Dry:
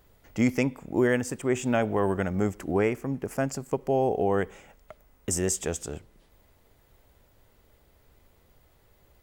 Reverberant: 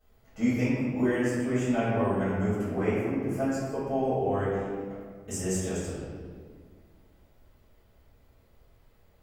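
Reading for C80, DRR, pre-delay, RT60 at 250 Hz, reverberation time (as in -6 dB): 0.5 dB, -15.0 dB, 5 ms, 2.4 s, 1.8 s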